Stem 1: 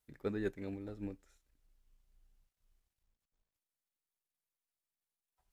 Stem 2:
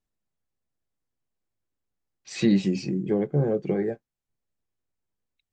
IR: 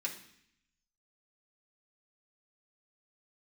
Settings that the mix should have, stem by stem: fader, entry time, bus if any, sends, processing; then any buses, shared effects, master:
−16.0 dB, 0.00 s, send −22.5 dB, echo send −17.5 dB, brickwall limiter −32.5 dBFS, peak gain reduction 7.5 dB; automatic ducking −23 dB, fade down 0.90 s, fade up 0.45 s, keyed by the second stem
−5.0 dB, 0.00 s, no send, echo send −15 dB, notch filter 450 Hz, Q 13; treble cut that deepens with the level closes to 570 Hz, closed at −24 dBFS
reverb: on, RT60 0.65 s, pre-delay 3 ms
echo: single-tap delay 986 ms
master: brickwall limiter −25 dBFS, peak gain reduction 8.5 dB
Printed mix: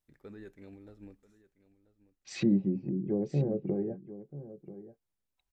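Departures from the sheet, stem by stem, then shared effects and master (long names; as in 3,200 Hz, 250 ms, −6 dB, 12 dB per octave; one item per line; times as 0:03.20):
stem 1 −16.0 dB → −7.0 dB
master: missing brickwall limiter −25 dBFS, peak gain reduction 8.5 dB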